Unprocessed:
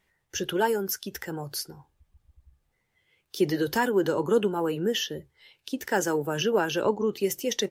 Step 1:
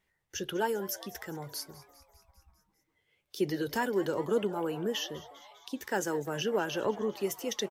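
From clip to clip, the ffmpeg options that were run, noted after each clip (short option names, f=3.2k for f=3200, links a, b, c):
-filter_complex "[0:a]asplit=7[a][b][c][d][e][f][g];[b]adelay=200,afreqshift=130,volume=-18dB[h];[c]adelay=400,afreqshift=260,volume=-22dB[i];[d]adelay=600,afreqshift=390,volume=-26dB[j];[e]adelay=800,afreqshift=520,volume=-30dB[k];[f]adelay=1000,afreqshift=650,volume=-34.1dB[l];[g]adelay=1200,afreqshift=780,volume=-38.1dB[m];[a][h][i][j][k][l][m]amix=inputs=7:normalize=0,volume=-6dB"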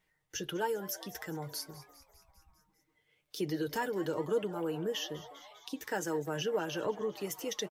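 -filter_complex "[0:a]aecho=1:1:6.5:0.46,asplit=2[a][b];[b]acompressor=threshold=-38dB:ratio=6,volume=0.5dB[c];[a][c]amix=inputs=2:normalize=0,volume=-6.5dB"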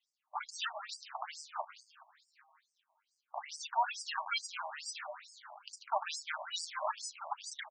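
-af "acrusher=samples=19:mix=1:aa=0.000001:lfo=1:lforange=11.4:lforate=0.73,afftfilt=real='re*between(b*sr/1024,800*pow(6600/800,0.5+0.5*sin(2*PI*2.3*pts/sr))/1.41,800*pow(6600/800,0.5+0.5*sin(2*PI*2.3*pts/sr))*1.41)':imag='im*between(b*sr/1024,800*pow(6600/800,0.5+0.5*sin(2*PI*2.3*pts/sr))/1.41,800*pow(6600/800,0.5+0.5*sin(2*PI*2.3*pts/sr))*1.41)':win_size=1024:overlap=0.75,volume=7.5dB"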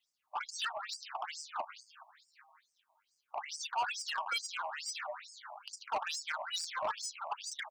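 -af "asoftclip=type=tanh:threshold=-32dB,volume=3.5dB"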